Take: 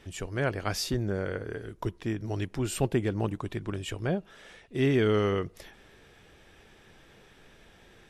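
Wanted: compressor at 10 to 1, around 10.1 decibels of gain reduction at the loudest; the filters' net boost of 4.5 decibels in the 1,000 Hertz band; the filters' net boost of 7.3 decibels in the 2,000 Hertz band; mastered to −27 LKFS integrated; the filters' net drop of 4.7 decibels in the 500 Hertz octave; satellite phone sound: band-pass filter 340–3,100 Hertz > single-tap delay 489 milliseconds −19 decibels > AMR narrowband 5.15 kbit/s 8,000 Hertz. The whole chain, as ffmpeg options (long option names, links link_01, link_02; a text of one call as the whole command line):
ffmpeg -i in.wav -af "equalizer=frequency=500:width_type=o:gain=-5.5,equalizer=frequency=1000:width_type=o:gain=5,equalizer=frequency=2000:width_type=o:gain=8.5,acompressor=threshold=-31dB:ratio=10,highpass=340,lowpass=3100,aecho=1:1:489:0.112,volume=15dB" -ar 8000 -c:a libopencore_amrnb -b:a 5150 out.amr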